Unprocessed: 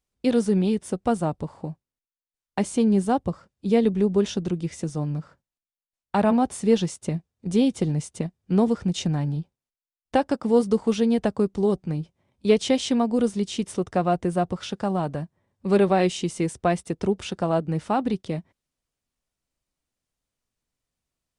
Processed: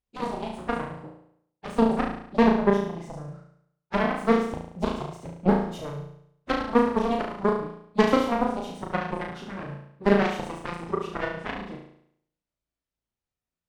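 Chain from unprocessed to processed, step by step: self-modulated delay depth 0.18 ms; high shelf 5000 Hz -10.5 dB; plain phase-vocoder stretch 0.64×; added harmonics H 3 -20 dB, 7 -16 dB, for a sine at -9 dBFS; flutter echo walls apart 6.1 m, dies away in 0.68 s; gain +3.5 dB

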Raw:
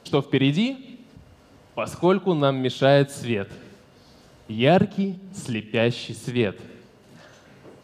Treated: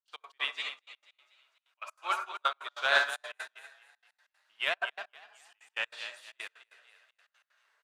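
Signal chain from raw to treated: ladder high-pass 1000 Hz, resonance 30%; added harmonics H 5 -29 dB, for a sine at -14.5 dBFS; frequency-shifting echo 0.243 s, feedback 55%, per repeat +39 Hz, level -4.5 dB; reverb RT60 0.40 s, pre-delay 57 ms, DRR 2 dB; step gate ".x.x.xxxxx" 190 bpm -24 dB; upward expander 2.5:1, over -42 dBFS; gain +6 dB

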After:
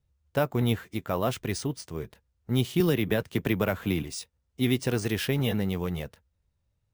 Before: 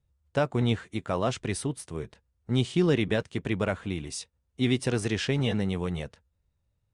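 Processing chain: careless resampling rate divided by 3×, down none, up hold; 2.8–4.03 three-band squash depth 100%

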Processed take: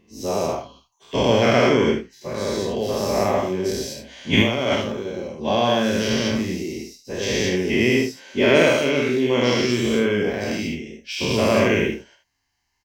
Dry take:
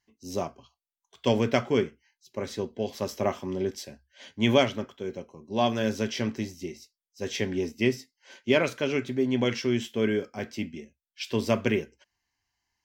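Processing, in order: spectral dilation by 0.24 s; 4.33–4.73 negative-ratio compressor -19 dBFS, ratio -0.5; early reflections 49 ms -6.5 dB, 76 ms -9 dB

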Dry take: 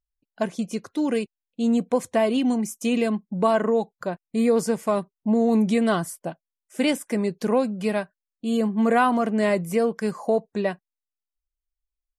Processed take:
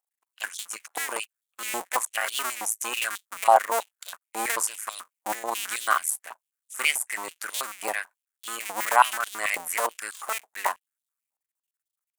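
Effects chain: cycle switcher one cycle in 2, muted; resonant high shelf 6200 Hz +9.5 dB, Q 1.5; stepped high-pass 9.2 Hz 810–3500 Hz; gain +1 dB

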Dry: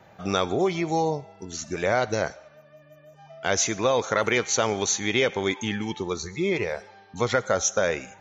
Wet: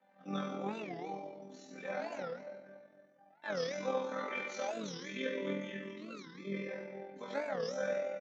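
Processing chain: HPF 190 Hz 24 dB/oct; air absorption 130 m; resonator bank G3 sus4, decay 0.48 s; on a send: feedback echo 0.262 s, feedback 42%, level -20.5 dB; on the sum: shoebox room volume 1900 m³, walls mixed, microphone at 2 m; AM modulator 42 Hz, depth 30%; 4.71–6.68 Butterworth band-stop 770 Hz, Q 2.2; record warp 45 rpm, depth 250 cents; gain +3.5 dB

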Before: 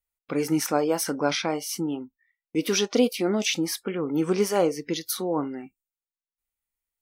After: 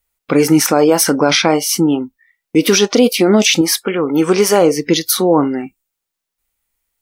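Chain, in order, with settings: 3.61–4.49 low shelf 280 Hz -9.5 dB; maximiser +16 dB; gain -1 dB

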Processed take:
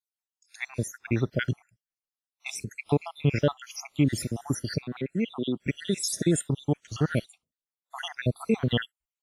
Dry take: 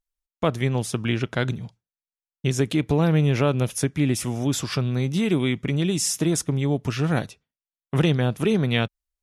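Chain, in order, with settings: random spectral dropouts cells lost 71%; 4.84–5.64 BPF 230–3200 Hz; WMA 32 kbps 32000 Hz

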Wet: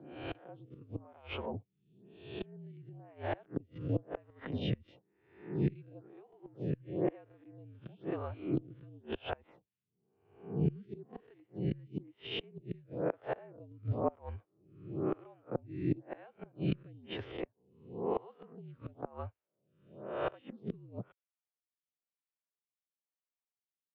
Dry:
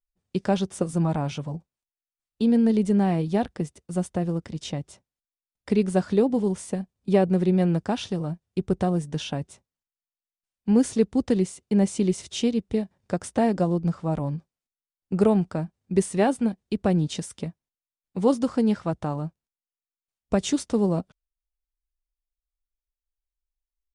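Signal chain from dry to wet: spectral swells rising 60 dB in 0.70 s; mistuned SSB -62 Hz 160–3200 Hz; vocal rider within 4 dB 2 s; flipped gate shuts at -15 dBFS, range -27 dB; photocell phaser 1 Hz; gain -3 dB

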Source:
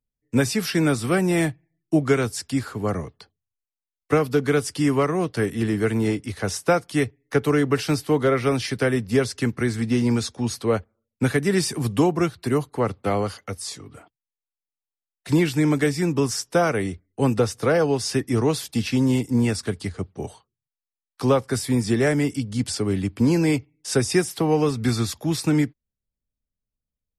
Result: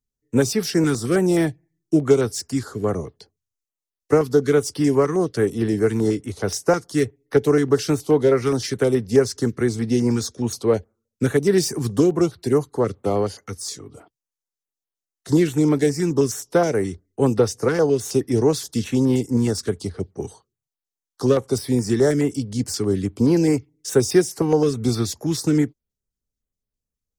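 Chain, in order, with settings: self-modulated delay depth 0.074 ms; fifteen-band EQ 400 Hz +6 dB, 2500 Hz -5 dB, 6300 Hz +7 dB; stepped notch 9.5 Hz 600–7000 Hz

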